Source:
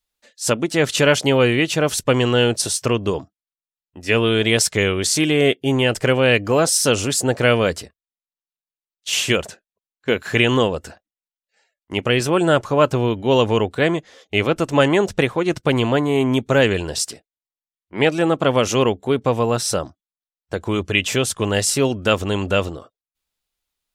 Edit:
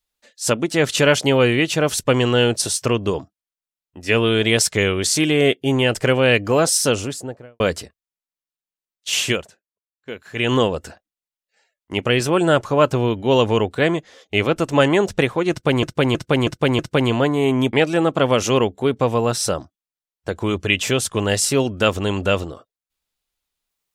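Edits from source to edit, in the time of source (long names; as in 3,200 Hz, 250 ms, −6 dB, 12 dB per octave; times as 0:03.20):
0:06.73–0:07.60: fade out and dull
0:09.27–0:10.53: duck −13 dB, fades 0.19 s
0:15.51–0:15.83: repeat, 5 plays
0:16.45–0:17.98: remove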